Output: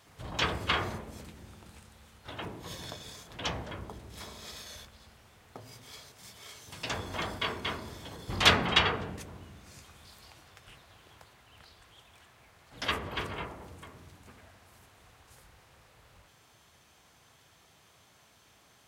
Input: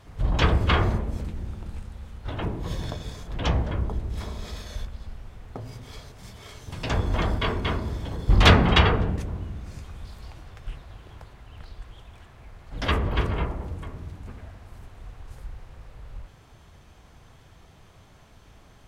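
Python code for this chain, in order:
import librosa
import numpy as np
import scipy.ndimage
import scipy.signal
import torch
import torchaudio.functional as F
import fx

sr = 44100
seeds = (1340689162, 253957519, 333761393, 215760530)

y = scipy.signal.sosfilt(scipy.signal.butter(2, 73.0, 'highpass', fs=sr, output='sos'), x)
y = fx.tilt_eq(y, sr, slope=2.5)
y = y * librosa.db_to_amplitude(-6.0)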